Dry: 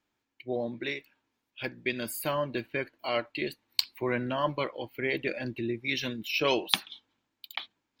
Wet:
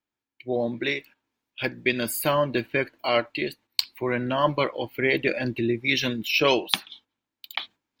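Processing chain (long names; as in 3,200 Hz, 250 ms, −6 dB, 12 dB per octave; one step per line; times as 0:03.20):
noise gate −54 dBFS, range −9 dB
automatic gain control gain up to 7.5 dB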